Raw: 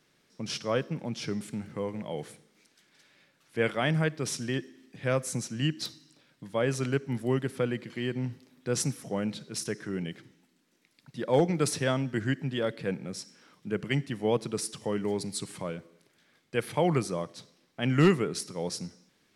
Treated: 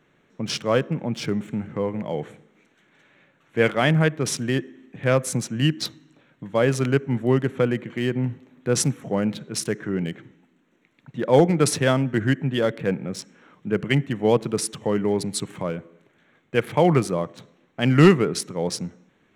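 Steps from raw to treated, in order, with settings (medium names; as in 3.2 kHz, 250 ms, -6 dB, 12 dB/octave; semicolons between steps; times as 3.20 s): local Wiener filter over 9 samples; trim +8 dB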